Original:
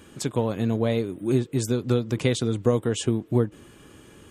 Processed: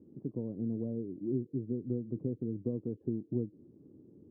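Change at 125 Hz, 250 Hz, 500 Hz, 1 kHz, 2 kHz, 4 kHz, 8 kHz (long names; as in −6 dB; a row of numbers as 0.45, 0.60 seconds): −13.5 dB, −9.5 dB, −14.5 dB, below −30 dB, below −40 dB, below −40 dB, below −40 dB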